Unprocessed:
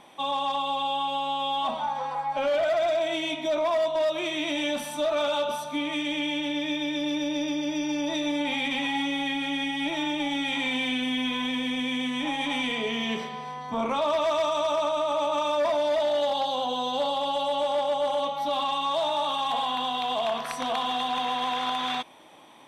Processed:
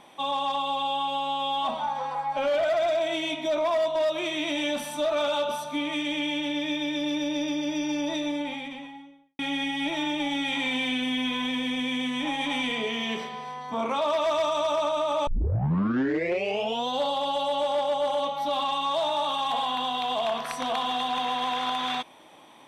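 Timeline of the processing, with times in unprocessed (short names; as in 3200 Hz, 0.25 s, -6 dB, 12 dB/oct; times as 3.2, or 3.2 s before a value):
7.93–9.39 studio fade out
12.85–14.26 HPF 190 Hz 6 dB/oct
15.27 tape start 1.61 s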